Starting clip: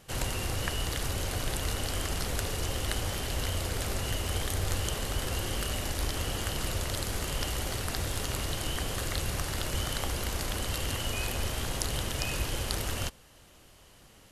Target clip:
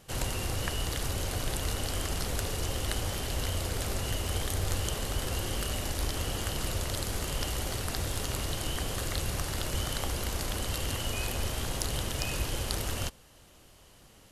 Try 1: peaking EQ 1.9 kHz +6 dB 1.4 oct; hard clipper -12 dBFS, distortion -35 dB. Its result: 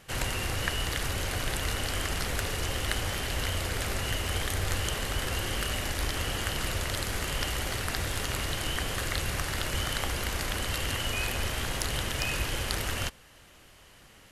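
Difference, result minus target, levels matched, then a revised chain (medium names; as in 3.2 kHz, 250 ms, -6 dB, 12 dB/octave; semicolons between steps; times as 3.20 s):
2 kHz band +5.0 dB
peaking EQ 1.9 kHz -2 dB 1.4 oct; hard clipper -12 dBFS, distortion -40 dB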